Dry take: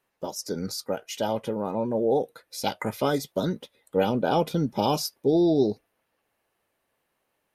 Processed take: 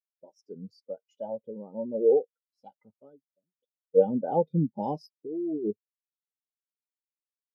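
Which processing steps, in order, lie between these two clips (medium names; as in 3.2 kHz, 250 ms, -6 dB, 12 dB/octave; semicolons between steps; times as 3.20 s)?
2.05–3.58 s: fade out linear; 5.21–5.71 s: compressor with a negative ratio -27 dBFS, ratio -1; spectral contrast expander 2.5:1; trim +2 dB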